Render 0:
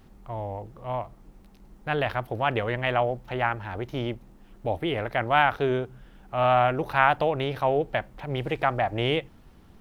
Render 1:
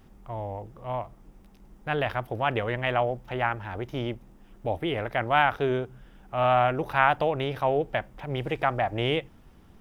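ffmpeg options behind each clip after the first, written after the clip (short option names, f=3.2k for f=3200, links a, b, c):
-af "bandreject=f=4.2k:w=10,volume=-1dB"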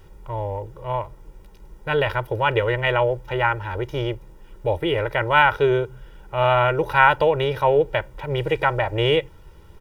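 -af "aecho=1:1:2.1:0.9,volume=4dB"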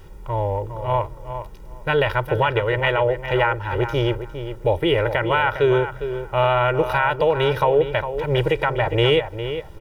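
-filter_complex "[0:a]alimiter=limit=-13dB:level=0:latency=1:release=363,asplit=2[a][b];[b]adelay=406,lowpass=f=2.8k:p=1,volume=-9.5dB,asplit=2[c][d];[d]adelay=406,lowpass=f=2.8k:p=1,volume=0.17[e];[a][c][e]amix=inputs=3:normalize=0,volume=4.5dB"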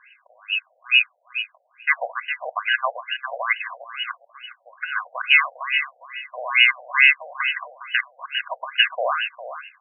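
-af "lowpass=f=3k:t=q:w=0.5098,lowpass=f=3k:t=q:w=0.6013,lowpass=f=3k:t=q:w=0.9,lowpass=f=3k:t=q:w=2.563,afreqshift=-3500,afftfilt=real='re*between(b*sr/1024,610*pow(2100/610,0.5+0.5*sin(2*PI*2.3*pts/sr))/1.41,610*pow(2100/610,0.5+0.5*sin(2*PI*2.3*pts/sr))*1.41)':imag='im*between(b*sr/1024,610*pow(2100/610,0.5+0.5*sin(2*PI*2.3*pts/sr))/1.41,610*pow(2100/610,0.5+0.5*sin(2*PI*2.3*pts/sr))*1.41)':win_size=1024:overlap=0.75,volume=7.5dB"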